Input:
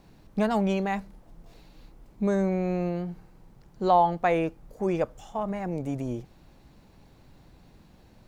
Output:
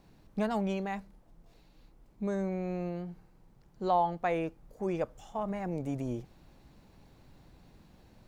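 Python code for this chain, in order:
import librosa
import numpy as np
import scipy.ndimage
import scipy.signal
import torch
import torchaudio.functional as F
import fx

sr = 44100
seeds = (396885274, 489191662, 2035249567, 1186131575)

y = fx.rider(x, sr, range_db=5, speed_s=2.0)
y = y * 10.0 ** (-7.5 / 20.0)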